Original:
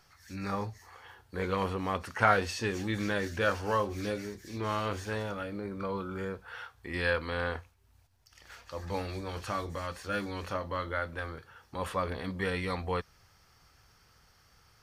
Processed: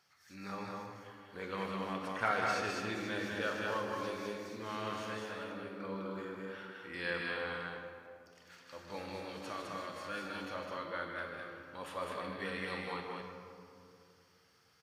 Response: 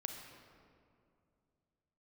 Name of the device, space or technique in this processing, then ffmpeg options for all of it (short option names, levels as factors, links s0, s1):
stadium PA: -filter_complex "[0:a]highpass=150,equalizer=f=3100:t=o:w=2.1:g=4,aecho=1:1:154.5|207:0.355|0.708[s0];[1:a]atrim=start_sample=2205[s1];[s0][s1]afir=irnorm=-1:irlink=0,volume=0.422"